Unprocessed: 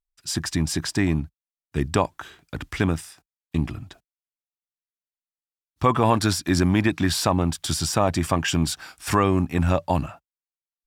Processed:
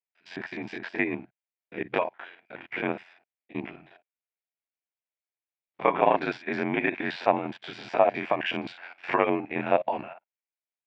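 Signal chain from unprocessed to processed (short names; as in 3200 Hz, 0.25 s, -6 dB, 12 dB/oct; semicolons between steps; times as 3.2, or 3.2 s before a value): stepped spectrum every 50 ms; ring modulator 44 Hz; speaker cabinet 430–2700 Hz, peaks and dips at 670 Hz +5 dB, 1200 Hz -9 dB, 2300 Hz +6 dB; gain +4 dB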